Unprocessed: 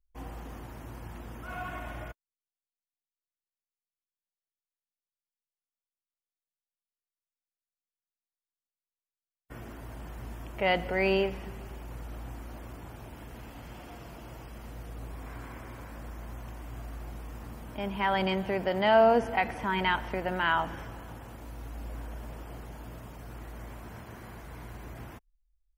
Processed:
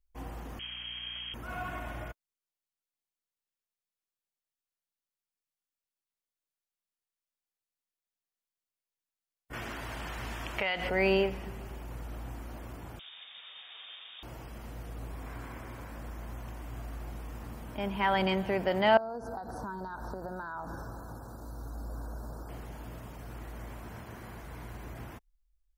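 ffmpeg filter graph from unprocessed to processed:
-filter_complex "[0:a]asettb=1/sr,asplit=3[a][b][c];[a]atrim=end=0.594[d];[b]atrim=start=0.59:end=1.34,asetpts=PTS-STARTPTS,afade=t=in:d=0.004:c=qsin,afade=t=out:st=0.746:d=0.004:c=qsin,aeval=exprs='val(0)+0.5*0.00355*sgn(val(0))':c=same,lowpass=f=2.8k:t=q:w=0.5098,lowpass=f=2.8k:t=q:w=0.6013,lowpass=f=2.8k:t=q:w=0.9,lowpass=f=2.8k:t=q:w=2.563,afreqshift=-3300,aeval=exprs='val(0)+0.002*(sin(2*PI*60*n/s)+sin(2*PI*2*60*n/s)/2+sin(2*PI*3*60*n/s)/3+sin(2*PI*4*60*n/s)/4+sin(2*PI*5*60*n/s)/5)':c=same[e];[c]atrim=start=1.336[f];[d][e]acrossfade=d=0.004:c1=hsin:c2=qsin[g];[g][f]acrossfade=d=0.004:c1=qsin:c2=hsin,asettb=1/sr,asplit=3[h][i][j];[h]atrim=end=9.534[k];[i]atrim=start=9.53:end=10.89,asetpts=PTS-STARTPTS,afade=t=in:d=0.004:c=qsin,afade=t=out:st=1.356:d=0.004:c=qsin,equalizer=f=2.9k:w=0.3:g=13.5,acompressor=threshold=-27dB:ratio=8:attack=3.2:release=140:knee=1:detection=peak[l];[j]atrim=start=10.886[m];[k][l]acrossfade=d=0.004:c1=hsin:c2=qsin[n];[n][m]acrossfade=d=0.004:c1=qsin:c2=hsin,asettb=1/sr,asplit=3[o][p][q];[o]atrim=end=12.994[r];[p]atrim=start=12.99:end=14.23,asetpts=PTS-STARTPTS,afade=t=in:d=0.004:c=qsin,afade=t=out:st=1.236:d=0.004:c=qsin,highpass=f=220:w=0.5412,highpass=f=220:w=1.3066,lowpass=f=3.3k:t=q:w=0.5098,lowpass=f=3.3k:t=q:w=0.6013,lowpass=f=3.3k:t=q:w=0.9,lowpass=f=3.3k:t=q:w=2.563,afreqshift=-3900[s];[q]atrim=start=14.226[t];[r][s]acrossfade=d=0.004:c1=hsin:c2=qsin[u];[u][t]acrossfade=d=0.004:c1=qsin:c2=hsin,asettb=1/sr,asplit=3[v][w][x];[v]atrim=end=18.974[y];[w]atrim=start=18.97:end=22.49,asetpts=PTS-STARTPTS,afade=t=in:d=0.004:c=qsin,afade=t=out:st=3.516:d=0.004:c=qsin,acompressor=threshold=-34dB:ratio=12:attack=3.2:release=140:knee=1:detection=peak,asuperstop=centerf=2500:order=12:qfactor=1.1[z];[x]atrim=start=22.486[aa];[y][z]acrossfade=d=0.004:c1=hsin:c2=qsin[ab];[ab][aa]acrossfade=d=0.004:c1=qsin:c2=hsin"

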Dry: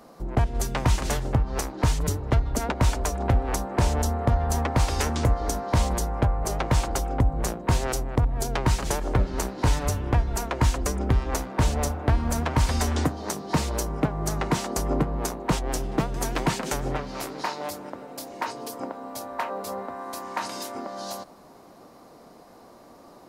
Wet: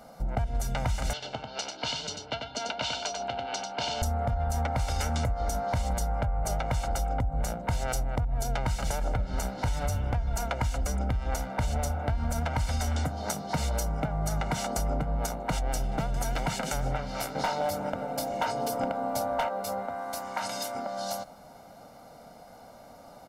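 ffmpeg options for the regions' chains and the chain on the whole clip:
-filter_complex "[0:a]asettb=1/sr,asplit=3[a][b][c];[a]atrim=end=1.134[d];[b]atrim=start=1.13:end=4.02,asetpts=PTS-STARTPTS,afade=t=in:d=0.004:c=qsin,afade=t=out:st=2.886:d=0.004:c=qsin,highpass=440,equalizer=f=540:t=q:w=4:g=-8,equalizer=f=800:t=q:w=4:g=-7,equalizer=f=1.2k:t=q:w=4:g=-8,equalizer=f=1.9k:t=q:w=4:g=-10,equalizer=f=3k:t=q:w=4:g=8,equalizer=f=4.3k:t=q:w=4:g=6,lowpass=f=5.7k:w=0.5412,lowpass=f=5.7k:w=1.3066,aecho=1:1:93:0.531,atrim=end_sample=127449[e];[c]atrim=start=4.016[f];[d][e]acrossfade=d=0.004:c1=hsin:c2=qsin[g];[g][f]acrossfade=d=0.004:c1=qsin:c2=hsin,asettb=1/sr,asplit=3[h][i][j];[h]atrim=end=17.354[k];[i]atrim=start=17.35:end=19.49,asetpts=PTS-STARTPTS,afade=t=in:d=0.004:c=qsin,afade=t=out:st=2.136:d=0.004:c=qsin,tiltshelf=f=1.4k:g=3.5,acontrast=27,asoftclip=type=hard:threshold=-19.5dB[l];[j]atrim=start=19.486[m];[k][l]acrossfade=d=0.004:c1=hsin:c2=qsin[n];[n][m]acrossfade=d=0.004:c1=qsin:c2=hsin,aecho=1:1:1.4:0.73,alimiter=limit=-15dB:level=0:latency=1:release=82,acompressor=threshold=-23dB:ratio=6,volume=-1.5dB"

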